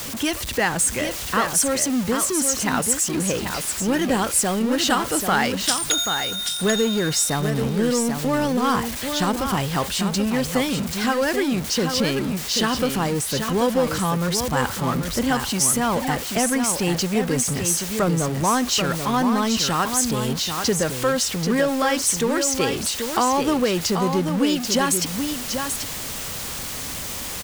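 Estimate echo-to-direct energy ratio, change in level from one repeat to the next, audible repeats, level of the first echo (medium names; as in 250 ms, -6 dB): -6.5 dB, no regular repeats, 1, -6.5 dB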